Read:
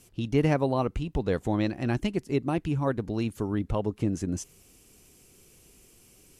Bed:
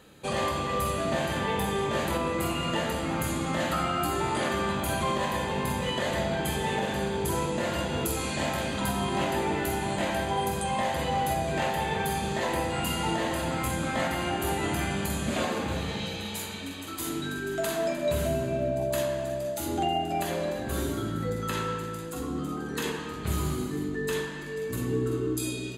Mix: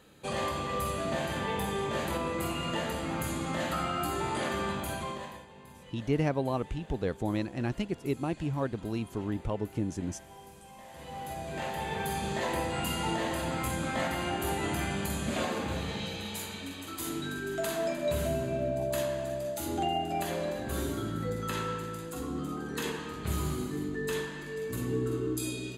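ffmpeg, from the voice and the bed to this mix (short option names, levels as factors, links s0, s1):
-filter_complex "[0:a]adelay=5750,volume=0.596[s0];[1:a]volume=5.96,afade=t=out:st=4.68:d=0.78:silence=0.11885,afade=t=in:st=10.86:d=1.44:silence=0.105925[s1];[s0][s1]amix=inputs=2:normalize=0"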